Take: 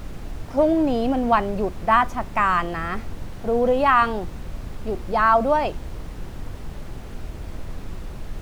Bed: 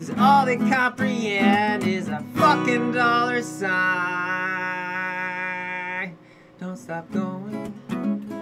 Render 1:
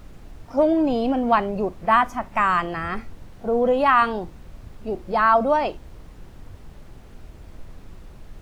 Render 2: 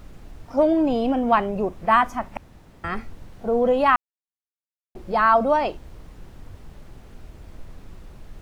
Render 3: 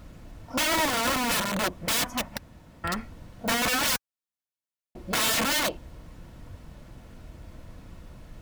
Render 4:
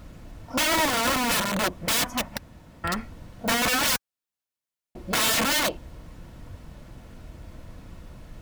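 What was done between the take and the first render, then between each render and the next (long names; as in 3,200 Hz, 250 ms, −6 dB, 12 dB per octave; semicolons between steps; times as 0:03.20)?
noise reduction from a noise print 9 dB
0:00.80–0:01.76: notch filter 4,400 Hz, Q 7.4; 0:02.37–0:02.84: fill with room tone; 0:03.96–0:04.95: silence
wrap-around overflow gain 19 dB; notch comb filter 400 Hz
level +2 dB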